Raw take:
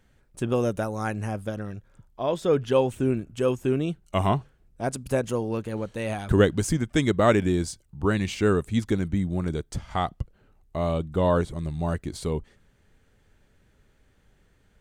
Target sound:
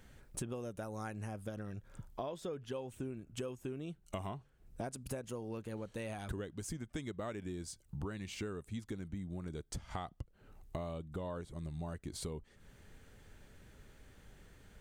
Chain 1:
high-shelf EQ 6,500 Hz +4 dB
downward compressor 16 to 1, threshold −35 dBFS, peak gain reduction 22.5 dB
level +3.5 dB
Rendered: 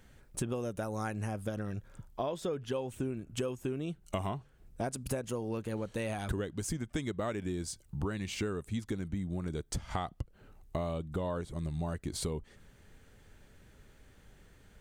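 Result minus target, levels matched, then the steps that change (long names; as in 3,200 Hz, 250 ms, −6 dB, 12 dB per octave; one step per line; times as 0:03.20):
downward compressor: peak gain reduction −6.5 dB
change: downward compressor 16 to 1, threshold −42 dBFS, peak gain reduction 29.5 dB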